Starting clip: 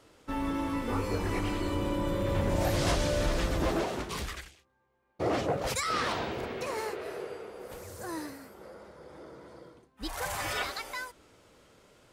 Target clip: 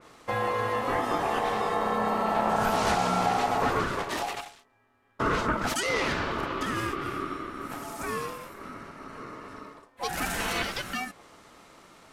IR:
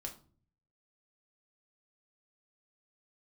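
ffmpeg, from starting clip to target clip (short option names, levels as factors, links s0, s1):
-filter_complex "[0:a]aresample=32000,aresample=44100,asplit=2[s0][s1];[s1]acompressor=threshold=0.0178:ratio=6,volume=1.26[s2];[s0][s2]amix=inputs=2:normalize=0,aeval=exprs='val(0)*sin(2*PI*770*n/s)':c=same,adynamicequalizer=threshold=0.00501:dfrequency=3000:dqfactor=0.7:tfrequency=3000:tqfactor=0.7:attack=5:release=100:ratio=0.375:range=1.5:mode=cutabove:tftype=highshelf,volume=1.33"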